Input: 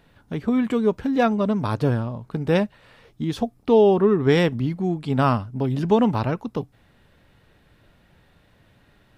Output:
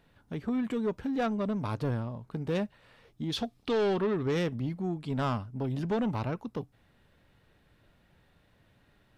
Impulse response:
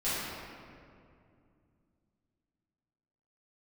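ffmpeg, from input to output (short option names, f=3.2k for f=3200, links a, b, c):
-filter_complex "[0:a]asettb=1/sr,asplit=3[a][b][c];[a]atrim=end=3.324[d];[b]atrim=start=3.32:end=4.23,asetpts=PTS-STARTPTS,afade=t=in:d=0.004:c=qsin,afade=t=out:st=0.906:d=0.004:c=qsin,equalizer=f=3.7k:w=0.74:g=13[e];[c]atrim=start=4.226[f];[d][e]acrossfade=d=0.004:c1=hsin:c2=qsin[g];[g][f]acrossfade=d=0.004:c1=qsin:c2=hsin,asoftclip=type=tanh:threshold=-16dB,volume=-7.5dB"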